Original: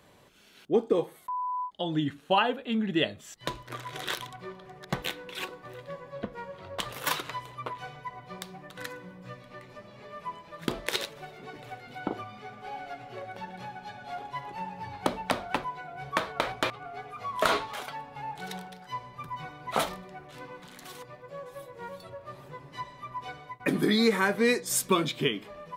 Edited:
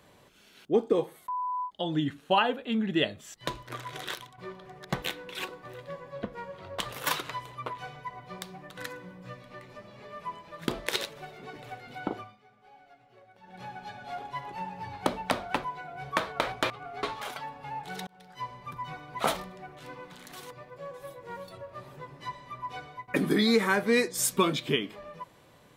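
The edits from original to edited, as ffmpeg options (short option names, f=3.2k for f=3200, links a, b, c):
-filter_complex "[0:a]asplit=6[a][b][c][d][e][f];[a]atrim=end=4.38,asetpts=PTS-STARTPTS,afade=t=out:st=3.87:d=0.51:silence=0.266073[g];[b]atrim=start=4.38:end=12.37,asetpts=PTS-STARTPTS,afade=t=in:d=0.004:c=hsin:silence=0.266073,afade=t=out:st=7.63:d=0.36:c=qsin:silence=0.149624[h];[c]atrim=start=12.37:end=13.43,asetpts=PTS-STARTPTS,volume=-16.5dB[i];[d]atrim=start=13.43:end=17.032,asetpts=PTS-STARTPTS,afade=t=in:d=0.36:c=qsin:silence=0.149624[j];[e]atrim=start=17.548:end=18.59,asetpts=PTS-STARTPTS,afade=t=out:st=1.038:d=0.004:c=hsin[k];[f]atrim=start=18.59,asetpts=PTS-STARTPTS,afade=t=in:d=0.5:c=qsin[l];[g][h][i][j]concat=n=4:v=0:a=1[m];[k][l]concat=n=2:v=0:a=1[n];[m][n]acrossfade=d=0.004:c1=hsin:c2=hsin"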